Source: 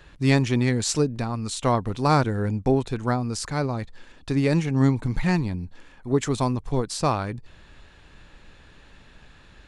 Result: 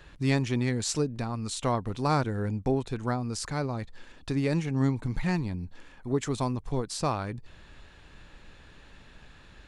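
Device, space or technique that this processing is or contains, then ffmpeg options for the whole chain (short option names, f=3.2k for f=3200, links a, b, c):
parallel compression: -filter_complex "[0:a]asplit=2[a][b];[b]acompressor=threshold=-32dB:ratio=6,volume=0dB[c];[a][c]amix=inputs=2:normalize=0,volume=-7.5dB"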